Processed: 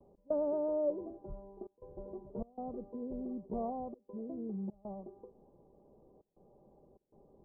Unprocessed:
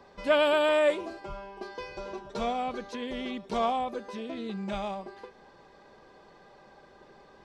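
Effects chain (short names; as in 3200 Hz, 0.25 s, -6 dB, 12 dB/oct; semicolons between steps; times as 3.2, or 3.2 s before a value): gate with hold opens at -48 dBFS; step gate "x.xxxxxxxxx.xxx" 99 bpm -24 dB; Gaussian blur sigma 14 samples; gain -2.5 dB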